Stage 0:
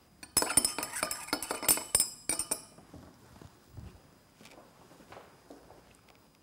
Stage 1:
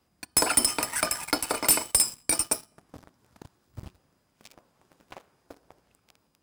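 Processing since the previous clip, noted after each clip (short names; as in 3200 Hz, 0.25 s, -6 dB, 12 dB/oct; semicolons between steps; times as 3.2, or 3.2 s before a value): sample leveller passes 3; gain -3 dB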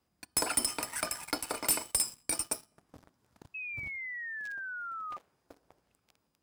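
painted sound fall, 3.54–5.17, 1200–2600 Hz -32 dBFS; gain -7.5 dB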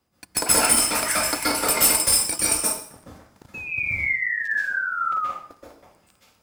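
plate-style reverb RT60 0.55 s, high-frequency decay 0.95×, pre-delay 0.115 s, DRR -8.5 dB; gain +5 dB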